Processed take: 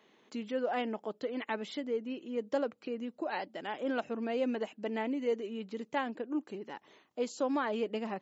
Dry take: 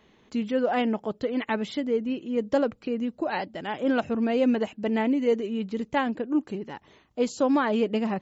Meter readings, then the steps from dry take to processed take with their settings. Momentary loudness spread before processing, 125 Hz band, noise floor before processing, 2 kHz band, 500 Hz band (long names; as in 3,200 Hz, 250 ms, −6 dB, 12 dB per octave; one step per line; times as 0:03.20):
8 LU, below −10 dB, −61 dBFS, −7.5 dB, −8.0 dB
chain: in parallel at −1.5 dB: downward compressor, threshold −35 dBFS, peak gain reduction 15.5 dB
on the sum: high-pass filter 270 Hz 12 dB per octave
level −9 dB